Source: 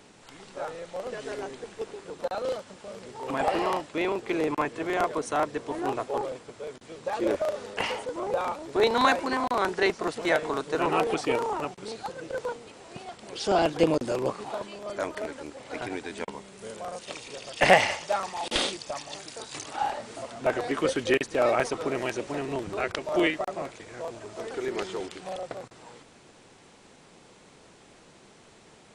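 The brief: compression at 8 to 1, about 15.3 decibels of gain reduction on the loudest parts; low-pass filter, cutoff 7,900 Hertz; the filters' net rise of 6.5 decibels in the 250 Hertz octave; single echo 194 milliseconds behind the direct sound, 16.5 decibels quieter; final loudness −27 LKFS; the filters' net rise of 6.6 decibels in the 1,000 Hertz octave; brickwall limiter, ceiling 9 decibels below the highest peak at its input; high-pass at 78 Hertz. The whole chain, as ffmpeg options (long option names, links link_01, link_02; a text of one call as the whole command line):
ffmpeg -i in.wav -af "highpass=78,lowpass=7900,equalizer=frequency=250:width_type=o:gain=8.5,equalizer=frequency=1000:width_type=o:gain=8,acompressor=threshold=-24dB:ratio=8,alimiter=limit=-21dB:level=0:latency=1,aecho=1:1:194:0.15,volume=5.5dB" out.wav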